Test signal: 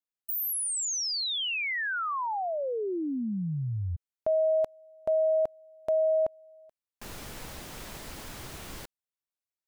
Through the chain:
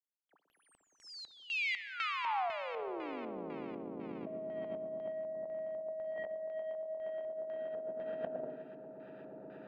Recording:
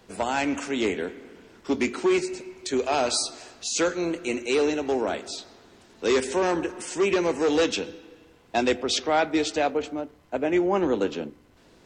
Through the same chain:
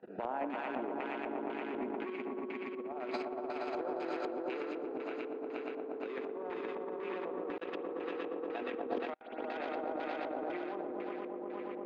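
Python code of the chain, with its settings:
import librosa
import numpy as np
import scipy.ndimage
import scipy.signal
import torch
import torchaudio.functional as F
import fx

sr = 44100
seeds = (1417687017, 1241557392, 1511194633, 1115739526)

y = fx.wiener(x, sr, points=41)
y = scipy.signal.sosfilt(scipy.signal.butter(4, 200.0, 'highpass', fs=sr, output='sos'), y)
y = fx.low_shelf(y, sr, hz=420.0, db=-11.0)
y = fx.notch(y, sr, hz=5600.0, q=6.6)
y = fx.echo_swell(y, sr, ms=118, loudest=5, wet_db=-5.5)
y = fx.level_steps(y, sr, step_db=22)
y = fx.filter_lfo_lowpass(y, sr, shape='square', hz=2.0, low_hz=930.0, high_hz=2300.0, q=0.93)
y = fx.rev_spring(y, sr, rt60_s=1.0, pass_ms=(59,), chirp_ms=30, drr_db=12.0)
y = fx.over_compress(y, sr, threshold_db=-48.0, ratio=-0.5)
y = fx.air_absorb(y, sr, metres=120.0)
y = F.gain(torch.from_numpy(y), 10.5).numpy()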